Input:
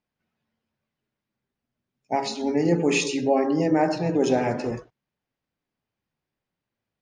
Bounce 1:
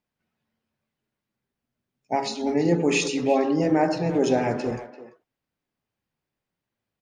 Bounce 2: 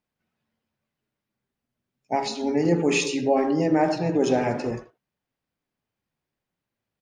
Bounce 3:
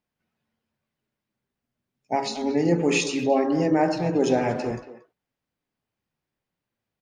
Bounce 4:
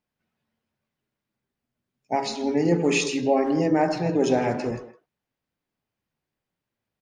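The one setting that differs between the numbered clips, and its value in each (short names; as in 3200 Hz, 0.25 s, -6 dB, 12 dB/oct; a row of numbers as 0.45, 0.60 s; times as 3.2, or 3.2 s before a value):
speakerphone echo, time: 340, 80, 230, 160 ms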